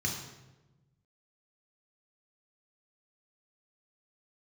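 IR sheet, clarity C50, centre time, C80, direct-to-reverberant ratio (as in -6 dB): 4.5 dB, 41 ms, 6.5 dB, -1.5 dB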